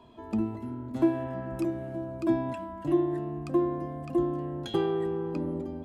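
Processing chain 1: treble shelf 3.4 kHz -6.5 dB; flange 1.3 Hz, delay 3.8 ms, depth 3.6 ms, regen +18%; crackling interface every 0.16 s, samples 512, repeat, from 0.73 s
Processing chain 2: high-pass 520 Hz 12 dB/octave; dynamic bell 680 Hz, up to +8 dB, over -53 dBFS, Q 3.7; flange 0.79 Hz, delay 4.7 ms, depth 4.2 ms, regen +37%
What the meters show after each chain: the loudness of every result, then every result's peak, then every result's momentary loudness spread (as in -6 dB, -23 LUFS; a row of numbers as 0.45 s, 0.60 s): -34.5 LUFS, -38.0 LUFS; -15.5 dBFS, -19.5 dBFS; 11 LU, 13 LU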